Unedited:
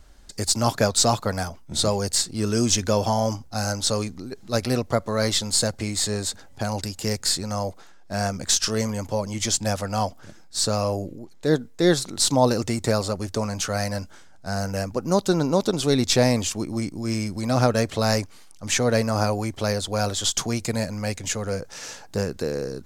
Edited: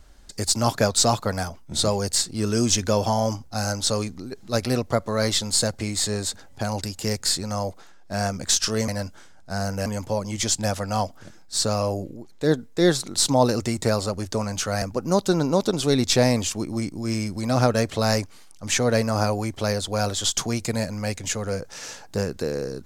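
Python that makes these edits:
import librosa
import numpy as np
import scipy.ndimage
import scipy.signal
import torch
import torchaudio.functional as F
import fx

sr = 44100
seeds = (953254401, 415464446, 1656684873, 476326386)

y = fx.edit(x, sr, fx.move(start_s=13.84, length_s=0.98, to_s=8.88), tone=tone)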